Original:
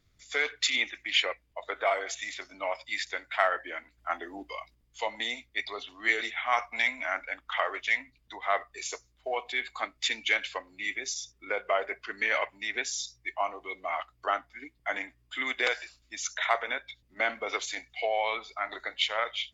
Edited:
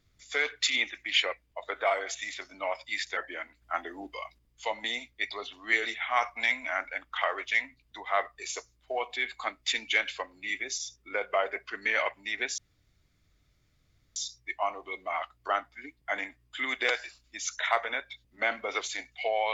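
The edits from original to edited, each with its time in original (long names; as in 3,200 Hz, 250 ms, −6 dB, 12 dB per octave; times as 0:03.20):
0:03.17–0:03.53: remove
0:12.94: splice in room tone 1.58 s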